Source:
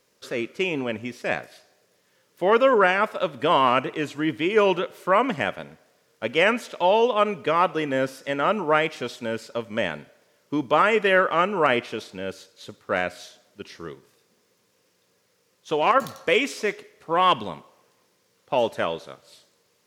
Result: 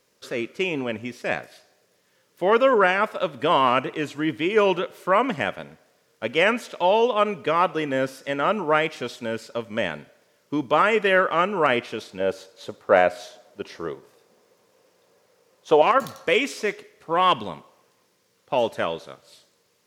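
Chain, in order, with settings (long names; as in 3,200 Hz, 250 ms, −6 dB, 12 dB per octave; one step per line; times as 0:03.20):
0:12.20–0:15.82: parametric band 660 Hz +10.5 dB 1.8 octaves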